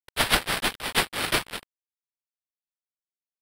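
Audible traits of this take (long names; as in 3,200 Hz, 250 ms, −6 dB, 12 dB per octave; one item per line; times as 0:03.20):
aliases and images of a low sample rate 6,700 Hz, jitter 0%
tremolo saw up 1.6 Hz, depth 55%
a quantiser's noise floor 6 bits, dither none
Ogg Vorbis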